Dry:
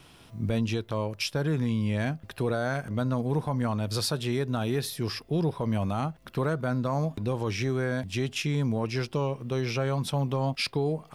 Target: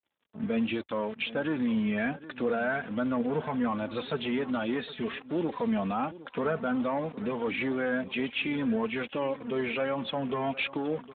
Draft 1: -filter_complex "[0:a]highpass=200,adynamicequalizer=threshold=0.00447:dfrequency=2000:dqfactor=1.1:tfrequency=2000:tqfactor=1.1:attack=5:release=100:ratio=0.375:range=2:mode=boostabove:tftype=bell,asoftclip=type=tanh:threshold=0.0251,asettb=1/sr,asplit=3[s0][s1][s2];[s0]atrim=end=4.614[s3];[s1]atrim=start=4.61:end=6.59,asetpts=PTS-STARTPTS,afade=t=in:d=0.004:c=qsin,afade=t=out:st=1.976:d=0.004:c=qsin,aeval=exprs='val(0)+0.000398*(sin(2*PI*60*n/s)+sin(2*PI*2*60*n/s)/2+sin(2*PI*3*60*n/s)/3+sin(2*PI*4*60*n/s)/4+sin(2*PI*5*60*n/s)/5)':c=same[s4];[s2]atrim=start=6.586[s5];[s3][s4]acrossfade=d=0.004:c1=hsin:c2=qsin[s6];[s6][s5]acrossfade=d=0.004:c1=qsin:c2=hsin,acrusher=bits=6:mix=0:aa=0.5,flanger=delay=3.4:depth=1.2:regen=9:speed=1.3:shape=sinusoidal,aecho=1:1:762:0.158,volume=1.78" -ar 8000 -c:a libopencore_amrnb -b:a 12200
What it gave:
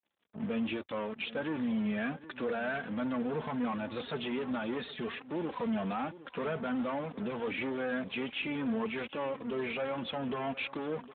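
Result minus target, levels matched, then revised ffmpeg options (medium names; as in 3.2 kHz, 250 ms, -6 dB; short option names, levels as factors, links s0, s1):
saturation: distortion +9 dB
-filter_complex "[0:a]highpass=200,adynamicequalizer=threshold=0.00447:dfrequency=2000:dqfactor=1.1:tfrequency=2000:tqfactor=1.1:attack=5:release=100:ratio=0.375:range=2:mode=boostabove:tftype=bell,asoftclip=type=tanh:threshold=0.0794,asettb=1/sr,asplit=3[s0][s1][s2];[s0]atrim=end=4.614[s3];[s1]atrim=start=4.61:end=6.59,asetpts=PTS-STARTPTS,afade=t=in:d=0.004:c=qsin,afade=t=out:st=1.976:d=0.004:c=qsin,aeval=exprs='val(0)+0.000398*(sin(2*PI*60*n/s)+sin(2*PI*2*60*n/s)/2+sin(2*PI*3*60*n/s)/3+sin(2*PI*4*60*n/s)/4+sin(2*PI*5*60*n/s)/5)':c=same[s4];[s2]atrim=start=6.586[s5];[s3][s4]acrossfade=d=0.004:c1=hsin:c2=qsin[s6];[s6][s5]acrossfade=d=0.004:c1=qsin:c2=hsin,acrusher=bits=6:mix=0:aa=0.5,flanger=delay=3.4:depth=1.2:regen=9:speed=1.3:shape=sinusoidal,aecho=1:1:762:0.158,volume=1.78" -ar 8000 -c:a libopencore_amrnb -b:a 12200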